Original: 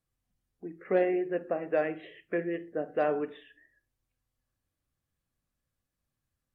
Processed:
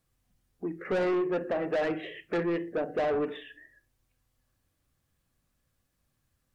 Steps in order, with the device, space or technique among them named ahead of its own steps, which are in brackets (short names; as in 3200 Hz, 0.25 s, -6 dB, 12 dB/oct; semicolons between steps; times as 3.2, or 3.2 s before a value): 2.81–3.28 bell 1400 Hz -5 dB 0.93 oct; saturation between pre-emphasis and de-emphasis (high shelf 3200 Hz +10.5 dB; soft clip -33 dBFS, distortion -6 dB; high shelf 3200 Hz -10.5 dB); gain +8.5 dB